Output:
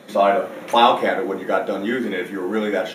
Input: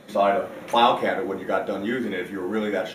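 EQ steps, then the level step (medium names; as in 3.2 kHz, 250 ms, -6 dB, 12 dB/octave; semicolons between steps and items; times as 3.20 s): high-pass 160 Hz 12 dB/octave; +4.0 dB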